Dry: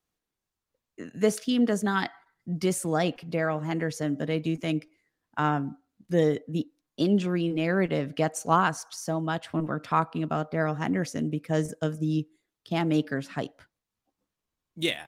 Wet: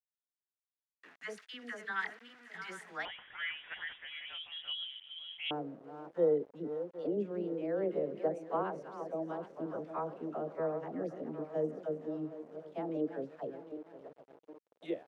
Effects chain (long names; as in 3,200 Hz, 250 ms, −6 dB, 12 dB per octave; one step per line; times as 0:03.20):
feedback delay that plays each chunk backwards 381 ms, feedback 64%, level −10.5 dB
all-pass dispersion lows, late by 70 ms, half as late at 690 Hz
centre clipping without the shift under −40.5 dBFS
band-pass filter sweep 1,800 Hz → 490 Hz, 0:03.91–0:05.00
0:03.05–0:05.51: voice inversion scrambler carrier 3,600 Hz
level −3 dB